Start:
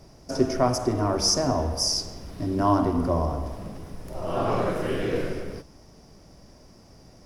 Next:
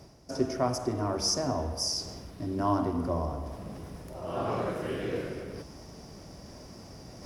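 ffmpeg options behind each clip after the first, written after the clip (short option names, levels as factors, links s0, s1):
-af "highpass=48,areverse,acompressor=mode=upward:threshold=0.0355:ratio=2.5,areverse,volume=0.501"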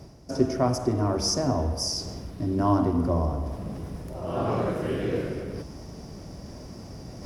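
-af "lowshelf=f=430:g=6.5,volume=1.19"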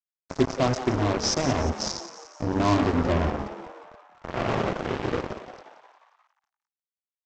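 -filter_complex "[0:a]aresample=16000,acrusher=bits=3:mix=0:aa=0.5,aresample=44100,asplit=7[s0][s1][s2][s3][s4][s5][s6];[s1]adelay=177,afreqshift=130,volume=0.224[s7];[s2]adelay=354,afreqshift=260,volume=0.123[s8];[s3]adelay=531,afreqshift=390,volume=0.0676[s9];[s4]adelay=708,afreqshift=520,volume=0.0372[s10];[s5]adelay=885,afreqshift=650,volume=0.0204[s11];[s6]adelay=1062,afreqshift=780,volume=0.0112[s12];[s0][s7][s8][s9][s10][s11][s12]amix=inputs=7:normalize=0"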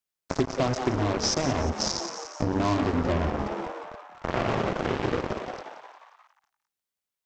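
-af "acompressor=threshold=0.0355:ratio=6,volume=2.24"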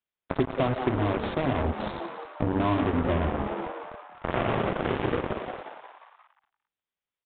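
-af "aresample=8000,aresample=44100"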